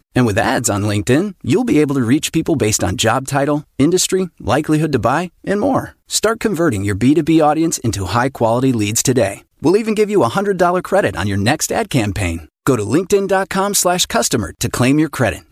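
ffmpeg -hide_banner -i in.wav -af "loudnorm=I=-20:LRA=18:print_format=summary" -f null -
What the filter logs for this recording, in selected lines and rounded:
Input Integrated:    -15.8 LUFS
Input True Peak:      -2.0 dBTP
Input LRA:             1.0 LU
Input Threshold:     -25.8 LUFS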